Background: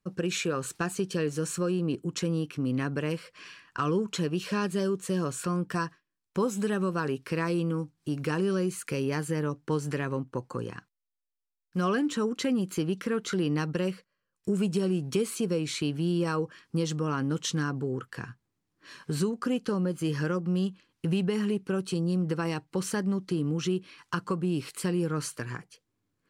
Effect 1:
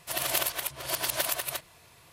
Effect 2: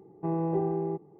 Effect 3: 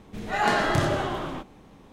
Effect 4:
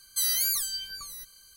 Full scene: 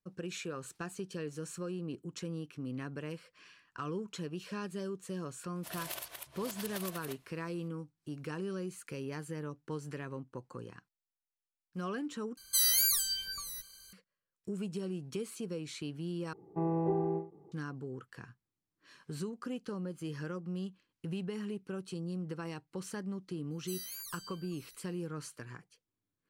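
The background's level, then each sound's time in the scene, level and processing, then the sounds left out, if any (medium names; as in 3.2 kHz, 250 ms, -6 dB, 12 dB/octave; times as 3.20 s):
background -11 dB
5.56 s: add 1 -14 dB
12.37 s: replace with 4 -1 dB
16.33 s: replace with 2 -3 dB + endings held to a fixed fall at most 170 dB/s
23.51 s: add 4 -18 dB
not used: 3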